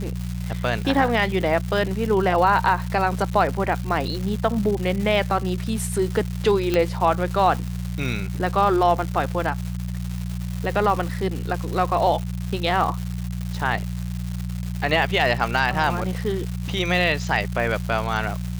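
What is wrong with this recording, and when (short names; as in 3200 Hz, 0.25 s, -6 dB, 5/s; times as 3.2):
crackle 370/s -28 dBFS
hum 60 Hz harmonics 3 -28 dBFS
6.74 pop -8 dBFS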